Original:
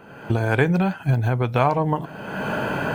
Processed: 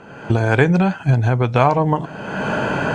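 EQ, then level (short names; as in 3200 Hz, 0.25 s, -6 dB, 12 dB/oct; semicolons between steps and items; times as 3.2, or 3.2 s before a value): synth low-pass 7100 Hz, resonance Q 2.1; high shelf 4500 Hz -5.5 dB; +4.5 dB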